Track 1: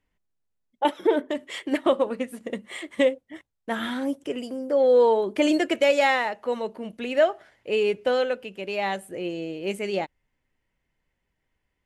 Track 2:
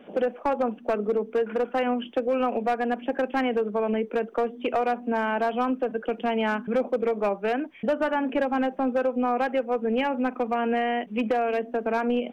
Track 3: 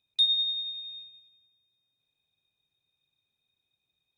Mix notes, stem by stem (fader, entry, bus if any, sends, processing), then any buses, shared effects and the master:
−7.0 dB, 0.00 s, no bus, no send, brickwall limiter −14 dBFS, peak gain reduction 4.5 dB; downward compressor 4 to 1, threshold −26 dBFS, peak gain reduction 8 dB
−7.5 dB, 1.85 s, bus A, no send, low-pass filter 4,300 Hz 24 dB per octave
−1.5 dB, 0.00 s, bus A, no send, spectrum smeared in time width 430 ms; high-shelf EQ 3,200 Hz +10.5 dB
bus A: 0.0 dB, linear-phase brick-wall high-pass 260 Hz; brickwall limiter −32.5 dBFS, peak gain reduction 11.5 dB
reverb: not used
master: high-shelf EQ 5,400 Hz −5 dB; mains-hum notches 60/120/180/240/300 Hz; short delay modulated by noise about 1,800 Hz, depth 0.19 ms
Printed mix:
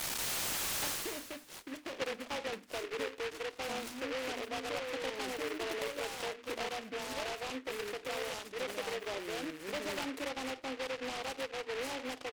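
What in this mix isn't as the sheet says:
stem 1 −7.0 dB → −14.0 dB
master: missing high-shelf EQ 5,400 Hz −5 dB

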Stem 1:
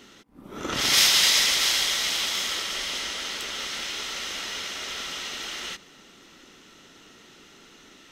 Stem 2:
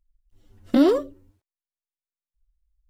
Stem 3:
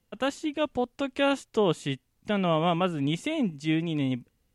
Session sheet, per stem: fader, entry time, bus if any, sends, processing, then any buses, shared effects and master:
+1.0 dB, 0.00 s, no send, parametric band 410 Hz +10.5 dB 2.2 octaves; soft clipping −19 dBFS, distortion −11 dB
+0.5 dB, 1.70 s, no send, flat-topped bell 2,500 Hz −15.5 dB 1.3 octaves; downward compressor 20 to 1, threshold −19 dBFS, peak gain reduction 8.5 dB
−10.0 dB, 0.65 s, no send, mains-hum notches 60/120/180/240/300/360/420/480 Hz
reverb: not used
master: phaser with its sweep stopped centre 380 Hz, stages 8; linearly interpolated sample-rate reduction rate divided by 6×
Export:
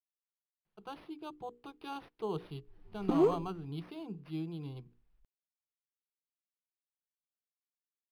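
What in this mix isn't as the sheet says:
stem 1: muted
stem 2: entry 1.70 s → 2.35 s

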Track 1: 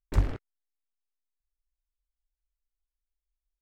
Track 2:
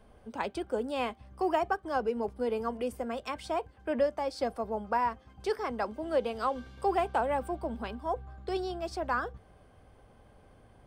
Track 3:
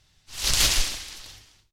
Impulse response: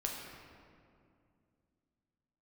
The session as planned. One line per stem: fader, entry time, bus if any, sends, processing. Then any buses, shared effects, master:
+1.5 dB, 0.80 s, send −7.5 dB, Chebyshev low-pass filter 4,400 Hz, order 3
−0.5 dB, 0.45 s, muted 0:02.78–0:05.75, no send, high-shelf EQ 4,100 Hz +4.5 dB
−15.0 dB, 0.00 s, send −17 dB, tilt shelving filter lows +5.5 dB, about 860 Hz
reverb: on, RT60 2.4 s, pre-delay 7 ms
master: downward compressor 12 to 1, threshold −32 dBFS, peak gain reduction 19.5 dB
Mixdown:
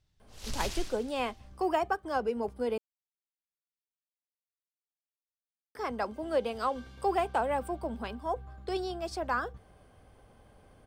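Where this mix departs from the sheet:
stem 1: muted
stem 2: entry 0.45 s → 0.20 s
master: missing downward compressor 12 to 1, threshold −32 dBFS, peak gain reduction 19.5 dB

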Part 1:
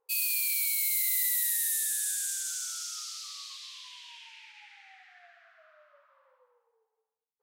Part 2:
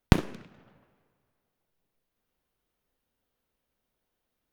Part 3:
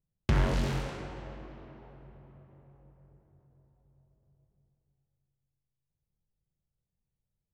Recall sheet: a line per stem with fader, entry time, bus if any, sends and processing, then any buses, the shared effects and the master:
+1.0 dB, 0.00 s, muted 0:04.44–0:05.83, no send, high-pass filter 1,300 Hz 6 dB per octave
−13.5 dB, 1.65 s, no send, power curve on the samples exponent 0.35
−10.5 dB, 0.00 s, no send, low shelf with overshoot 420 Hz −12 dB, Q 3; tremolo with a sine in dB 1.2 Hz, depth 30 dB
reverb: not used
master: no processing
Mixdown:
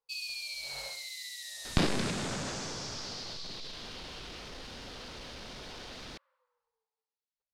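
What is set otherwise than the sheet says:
stem 1 +1.0 dB → −6.5 dB
master: extra low-pass with resonance 4,700 Hz, resonance Q 2.3

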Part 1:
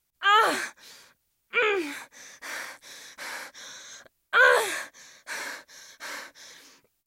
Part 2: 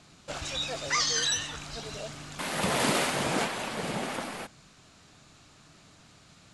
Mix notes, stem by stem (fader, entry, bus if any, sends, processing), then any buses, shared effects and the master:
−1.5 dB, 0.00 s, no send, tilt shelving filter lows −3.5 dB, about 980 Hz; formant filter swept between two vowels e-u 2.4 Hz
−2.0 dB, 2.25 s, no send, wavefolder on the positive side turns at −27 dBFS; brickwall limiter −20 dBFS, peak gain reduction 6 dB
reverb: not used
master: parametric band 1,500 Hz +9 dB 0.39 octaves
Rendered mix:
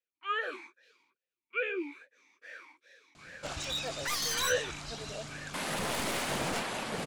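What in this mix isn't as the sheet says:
stem 2: entry 2.25 s → 3.15 s
master: missing parametric band 1,500 Hz +9 dB 0.39 octaves

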